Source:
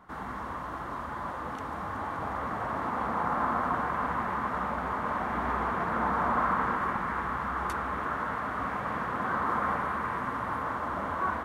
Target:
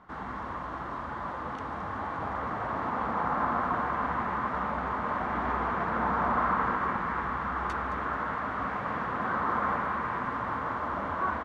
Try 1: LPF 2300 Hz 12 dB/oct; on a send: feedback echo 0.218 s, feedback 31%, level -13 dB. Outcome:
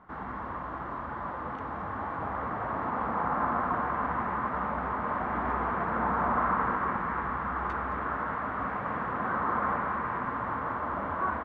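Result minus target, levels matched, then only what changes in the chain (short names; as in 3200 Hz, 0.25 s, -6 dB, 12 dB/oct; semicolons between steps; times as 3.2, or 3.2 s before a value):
4000 Hz band -6.5 dB
change: LPF 5300 Hz 12 dB/oct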